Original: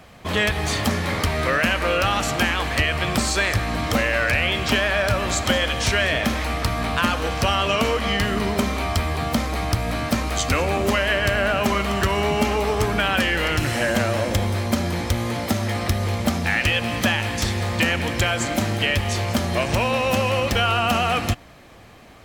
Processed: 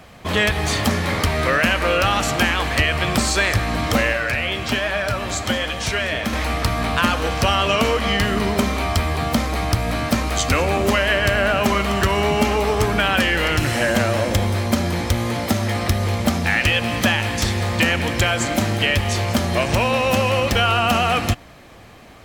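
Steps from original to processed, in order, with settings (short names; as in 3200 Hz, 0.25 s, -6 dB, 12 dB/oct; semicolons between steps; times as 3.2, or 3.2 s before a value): 4.13–6.33 flange 1.2 Hz, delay 4.9 ms, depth 5.8 ms, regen +56%; gain +2.5 dB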